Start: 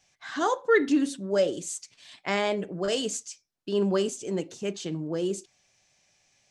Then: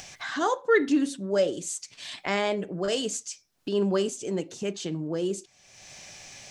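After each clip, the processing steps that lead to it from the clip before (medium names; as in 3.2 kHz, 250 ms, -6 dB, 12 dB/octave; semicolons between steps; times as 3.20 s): upward compressor, threshold -28 dBFS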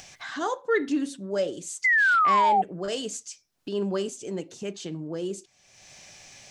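painted sound fall, 1.84–2.62 s, 740–2100 Hz -17 dBFS; trim -3 dB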